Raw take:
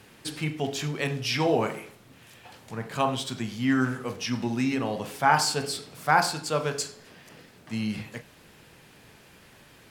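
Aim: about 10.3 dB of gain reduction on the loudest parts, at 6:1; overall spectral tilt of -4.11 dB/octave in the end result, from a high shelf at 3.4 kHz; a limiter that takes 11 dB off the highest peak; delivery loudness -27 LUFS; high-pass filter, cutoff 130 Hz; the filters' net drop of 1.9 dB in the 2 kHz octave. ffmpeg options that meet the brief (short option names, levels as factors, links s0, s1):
-af "highpass=130,equalizer=f=2000:t=o:g=-5.5,highshelf=f=3400:g=9,acompressor=threshold=0.0447:ratio=6,volume=2.99,alimiter=limit=0.141:level=0:latency=1"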